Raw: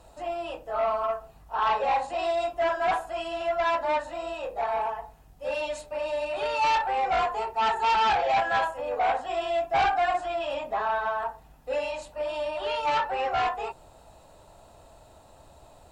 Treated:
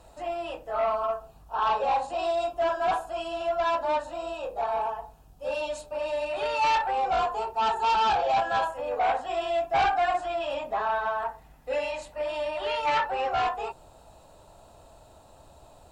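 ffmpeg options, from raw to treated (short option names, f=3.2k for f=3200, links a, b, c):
-af "asetnsamples=n=441:p=0,asendcmd='0.95 equalizer g -10.5;6.01 equalizer g -0.5;6.91 equalizer g -12;8.7 equalizer g -2;11.25 equalizer g 5.5;13.06 equalizer g -4.5',equalizer=f=2k:t=o:w=0.38:g=1"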